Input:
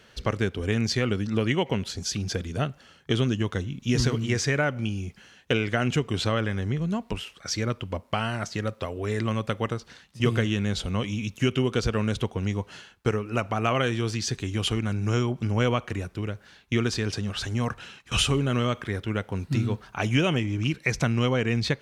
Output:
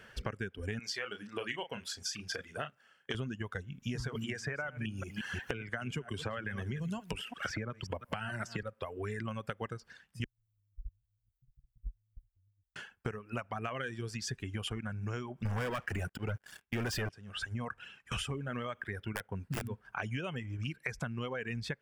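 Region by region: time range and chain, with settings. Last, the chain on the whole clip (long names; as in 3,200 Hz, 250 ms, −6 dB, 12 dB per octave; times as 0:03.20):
0:00.79–0:03.15: dynamic equaliser 4,400 Hz, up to +4 dB, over −44 dBFS, Q 0.9 + high-pass filter 620 Hz 6 dB per octave + double-tracking delay 34 ms −7 dB
0:04.15–0:08.63: delay that plays each chunk backwards 177 ms, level −12 dB + multiband upward and downward compressor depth 100%
0:10.24–0:12.76: inverse Chebyshev band-stop filter 230–7,200 Hz, stop band 80 dB + transient designer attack +7 dB, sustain +1 dB
0:15.45–0:17.09: volume swells 167 ms + leveller curve on the samples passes 5
0:19.13–0:19.85: downward expander −42 dBFS + wrap-around overflow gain 17.5 dB
whole clip: reverb reduction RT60 1.8 s; thirty-one-band graphic EQ 315 Hz −5 dB, 1,600 Hz +7 dB, 4,000 Hz −11 dB, 6,300 Hz −6 dB; downward compressor 6 to 1, threshold −34 dBFS; level −1 dB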